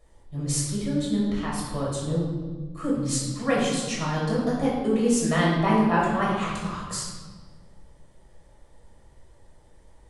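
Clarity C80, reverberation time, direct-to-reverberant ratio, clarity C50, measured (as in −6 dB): 3.5 dB, 1.5 s, −6.0 dB, 0.5 dB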